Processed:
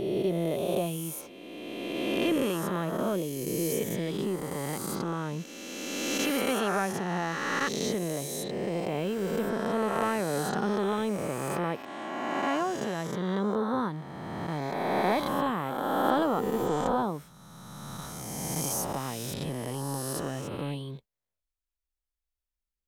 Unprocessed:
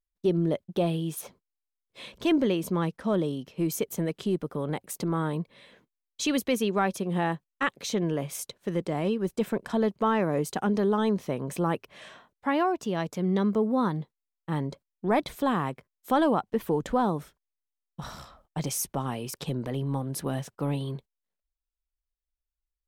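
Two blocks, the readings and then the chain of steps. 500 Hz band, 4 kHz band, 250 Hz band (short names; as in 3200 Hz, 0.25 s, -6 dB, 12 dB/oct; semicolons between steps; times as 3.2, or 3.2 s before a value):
-1.0 dB, +1.5 dB, -3.0 dB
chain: spectral swells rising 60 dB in 2.53 s; gain -6 dB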